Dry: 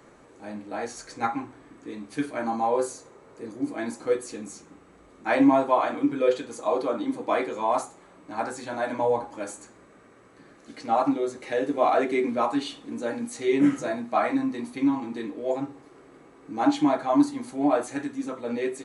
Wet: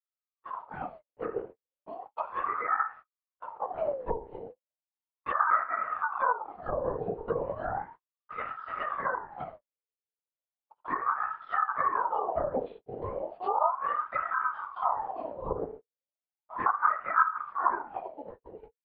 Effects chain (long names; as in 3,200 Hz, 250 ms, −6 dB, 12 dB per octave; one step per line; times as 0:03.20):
fade-out on the ending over 1.18 s
dynamic equaliser 550 Hz, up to +4 dB, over −39 dBFS, Q 2.5
flanger 0.12 Hz, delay 2.6 ms, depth 9.4 ms, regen −81%
linear-prediction vocoder at 8 kHz whisper
four-comb reverb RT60 0.31 s, combs from 33 ms, DRR 13 dB
noise gate −44 dBFS, range −54 dB
treble cut that deepens with the level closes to 460 Hz, closed at −22 dBFS
spectral tilt −3 dB per octave
ring modulator whose carrier an LFO sweeps 870 Hz, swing 50%, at 0.35 Hz
level −7.5 dB